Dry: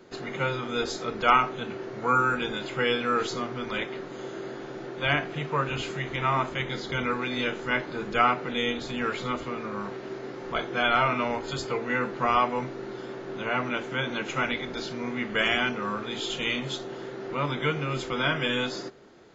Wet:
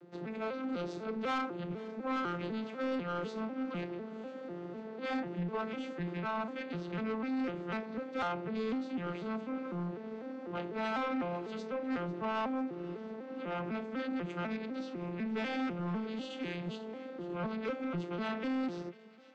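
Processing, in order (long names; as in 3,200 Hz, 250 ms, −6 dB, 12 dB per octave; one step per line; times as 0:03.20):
vocoder with an arpeggio as carrier major triad, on F3, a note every 249 ms
soft clipping −25.5 dBFS, distortion −11 dB
high-frequency loss of the air 71 metres
delay with a high-pass on its return 496 ms, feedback 60%, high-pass 1,900 Hz, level −17 dB
level −4.5 dB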